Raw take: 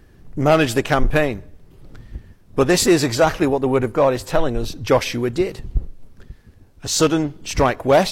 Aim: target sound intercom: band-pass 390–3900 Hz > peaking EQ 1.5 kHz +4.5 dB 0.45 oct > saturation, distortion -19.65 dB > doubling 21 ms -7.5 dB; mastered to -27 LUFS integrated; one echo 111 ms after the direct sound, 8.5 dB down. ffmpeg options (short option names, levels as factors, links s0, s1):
-filter_complex "[0:a]highpass=390,lowpass=3900,equalizer=f=1500:t=o:w=0.45:g=4.5,aecho=1:1:111:0.376,asoftclip=threshold=0.501,asplit=2[s0][s1];[s1]adelay=21,volume=0.422[s2];[s0][s2]amix=inputs=2:normalize=0,volume=0.473"